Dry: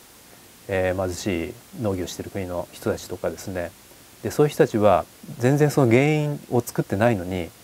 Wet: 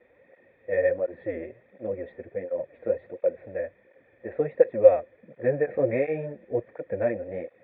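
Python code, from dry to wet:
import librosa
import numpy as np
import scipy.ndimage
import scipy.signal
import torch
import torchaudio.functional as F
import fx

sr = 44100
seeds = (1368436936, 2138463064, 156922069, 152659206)

y = fx.formant_cascade(x, sr, vowel='e')
y = fx.notch(y, sr, hz=2800.0, q=5.6)
y = fx.flanger_cancel(y, sr, hz=1.4, depth_ms=7.8)
y = y * 10.0 ** (7.0 / 20.0)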